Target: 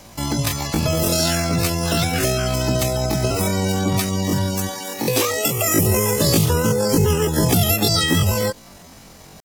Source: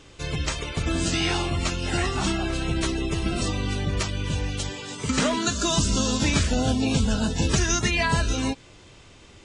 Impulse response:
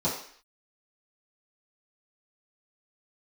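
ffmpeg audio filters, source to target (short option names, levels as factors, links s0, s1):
-filter_complex "[0:a]asetrate=85689,aresample=44100,atempo=0.514651,acrossover=split=430|3000[s0][s1][s2];[s1]acompressor=threshold=0.0316:ratio=6[s3];[s0][s3][s2]amix=inputs=3:normalize=0,volume=2.11"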